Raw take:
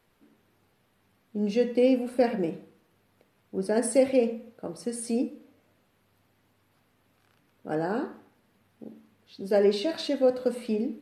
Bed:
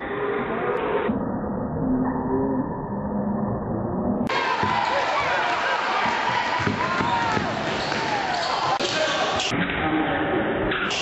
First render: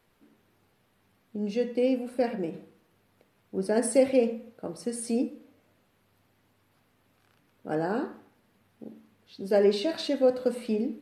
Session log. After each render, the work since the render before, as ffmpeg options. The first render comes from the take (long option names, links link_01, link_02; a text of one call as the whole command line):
ffmpeg -i in.wav -filter_complex "[0:a]asplit=3[link_01][link_02][link_03];[link_01]atrim=end=1.362[link_04];[link_02]atrim=start=1.358:end=2.542,asetpts=PTS-STARTPTS,volume=-3.5dB[link_05];[link_03]atrim=start=2.538[link_06];[link_04][link_05]acrossfade=duration=0.004:curve1=hsin:curve2=hsin[link_07];[link_07][link_06]acrossfade=duration=0.004:curve1=hsin:curve2=hsin" out.wav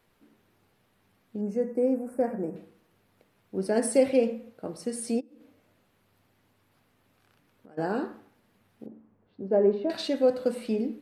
ffmpeg -i in.wav -filter_complex "[0:a]asettb=1/sr,asplit=3[link_01][link_02][link_03];[link_01]atrim=end=1.414[link_04];[link_02]atrim=start=1.41:end=2.56,asetpts=PTS-STARTPTS,afade=type=in:duration=0.004:curve=qsin,afade=type=out:start_time=1.146:duration=0.004:curve=qsin,asuperstop=centerf=3500:order=4:qfactor=0.59[link_05];[link_03]atrim=start=2.556[link_06];[link_04][link_05]acrossfade=duration=0.004:curve1=hsin:curve2=qsin[link_07];[link_07][link_06]acrossfade=duration=0.004:curve1=qsin:curve2=hsin,asplit=3[link_08][link_09][link_10];[link_08]afade=type=out:start_time=5.19:duration=0.02[link_11];[link_09]acompressor=threshold=-48dB:ratio=16:attack=3.2:release=140:knee=1:detection=peak,afade=type=in:start_time=5.19:duration=0.02,afade=type=out:start_time=7.77:duration=0.02[link_12];[link_10]afade=type=in:start_time=7.77:duration=0.02[link_13];[link_11][link_12][link_13]amix=inputs=3:normalize=0,asettb=1/sr,asplit=3[link_14][link_15][link_16];[link_14]atrim=end=8.864[link_17];[link_15]atrim=start=8.86:end=9.9,asetpts=PTS-STARTPTS,afade=type=in:duration=0.004:curve=qsin,afade=type=out:start_time=1.036:duration=0.004:curve=qsin,lowpass=1000[link_18];[link_16]atrim=start=9.896[link_19];[link_17][link_18]acrossfade=duration=0.004:curve1=hsin:curve2=qsin[link_20];[link_20][link_19]acrossfade=duration=0.004:curve1=qsin:curve2=hsin" out.wav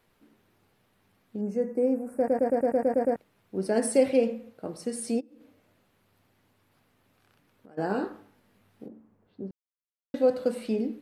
ffmpeg -i in.wav -filter_complex "[0:a]asettb=1/sr,asplit=3[link_01][link_02][link_03];[link_01]atrim=end=7.884[link_04];[link_02]atrim=start=7.88:end=8.9,asetpts=PTS-STARTPTS,afade=type=in:duration=0.004:curve=qsin,afade=type=out:start_time=1.016:duration=0.004:curve=qsin,asplit=2[link_05][link_06];[link_06]adelay=20,volume=-5.5dB[link_07];[link_05][link_07]amix=inputs=2:normalize=0,atrim=end_sample=44982[link_08];[link_03]atrim=start=8.896[link_09];[link_04][link_08]acrossfade=duration=0.004:curve1=hsin:curve2=qsin[link_10];[link_10][link_09]acrossfade=duration=0.004:curve1=qsin:curve2=hsin,asplit=12[link_11][link_12][link_13][link_14][link_15][link_16][link_17][link_18][link_19][link_20][link_21][link_22];[link_11]atrim=end=2.282[link_23];[link_12]atrim=start=2.168:end=2.282[link_24];[link_13]atrim=start=2.168:end=2.282[link_25];[link_14]atrim=start=2.168:end=2.282[link_26];[link_15]atrim=start=2.168:end=2.282[link_27];[link_16]atrim=start=2.168:end=2.282[link_28];[link_17]atrim=start=2.168:end=2.282[link_29];[link_18]atrim=start=2.168:end=2.282[link_30];[link_19]atrim=start=2.168:end=2.282[link_31];[link_20]atrim=start=3.158:end=9.51,asetpts=PTS-STARTPTS,afade=type=out:start_time=6.348:duration=0.004:curve=hsin[link_32];[link_21]atrim=start=9.51:end=10.14,asetpts=PTS-STARTPTS,volume=0[link_33];[link_22]atrim=start=10.14,asetpts=PTS-STARTPTS,afade=type=in:duration=0.004:curve=hsin[link_34];[link_23][link_24]acrossfade=duration=0.004:curve1=hsin:curve2=hsin[link_35];[link_35][link_25]acrossfade=duration=0.004:curve1=hsin:curve2=hsin[link_36];[link_36][link_26]acrossfade=duration=0.004:curve1=hsin:curve2=hsin[link_37];[link_37][link_27]acrossfade=duration=0.004:curve1=hsin:curve2=hsin[link_38];[link_38][link_28]acrossfade=duration=0.004:curve1=hsin:curve2=hsin[link_39];[link_39][link_29]acrossfade=duration=0.004:curve1=hsin:curve2=hsin[link_40];[link_40][link_30]acrossfade=duration=0.004:curve1=hsin:curve2=hsin[link_41];[link_41][link_31]acrossfade=duration=0.004:curve1=hsin:curve2=hsin[link_42];[link_32][link_33][link_34]concat=n=3:v=0:a=1[link_43];[link_42][link_43]acrossfade=duration=0.004:curve1=hsin:curve2=hsin" out.wav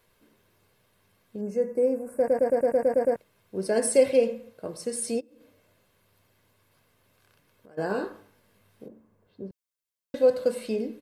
ffmpeg -i in.wav -af "highshelf=frequency=3900:gain=5.5,aecho=1:1:1.9:0.39" out.wav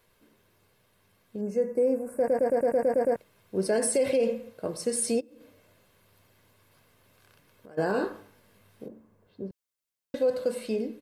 ffmpeg -i in.wav -af "dynaudnorm=framelen=420:gausssize=11:maxgain=3.5dB,alimiter=limit=-17dB:level=0:latency=1:release=44" out.wav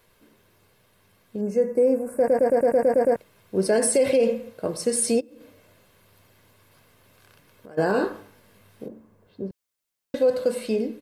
ffmpeg -i in.wav -af "volume=5dB" out.wav